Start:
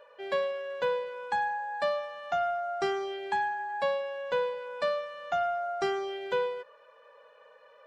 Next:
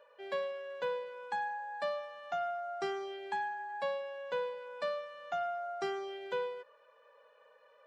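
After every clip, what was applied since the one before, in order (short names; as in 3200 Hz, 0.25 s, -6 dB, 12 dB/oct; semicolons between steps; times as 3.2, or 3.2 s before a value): HPF 120 Hz 12 dB/oct; gain -6.5 dB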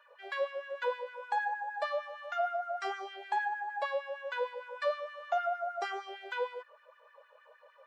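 LFO high-pass sine 6.5 Hz 530–1800 Hz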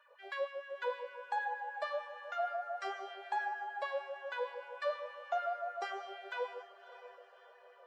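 diffused feedback echo 0.601 s, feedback 44%, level -14 dB; gain -4 dB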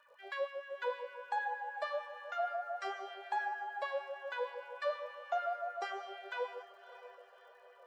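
crackle 96/s -64 dBFS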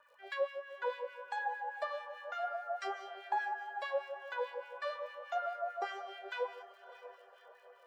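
harmonic tremolo 4.8 Hz, crossover 1500 Hz; gain +3.5 dB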